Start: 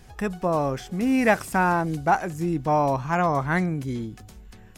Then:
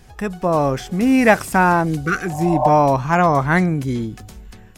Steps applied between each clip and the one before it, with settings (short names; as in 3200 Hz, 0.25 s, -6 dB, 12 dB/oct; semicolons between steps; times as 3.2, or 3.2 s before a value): spectral repair 2.06–2.66, 500–1100 Hz both; AGC gain up to 5 dB; gain +2.5 dB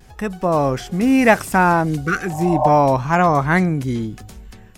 vibrato 0.95 Hz 38 cents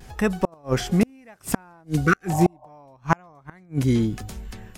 flipped gate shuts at -9 dBFS, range -37 dB; gain +2.5 dB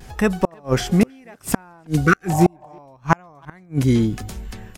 speakerphone echo 0.32 s, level -28 dB; gain +3.5 dB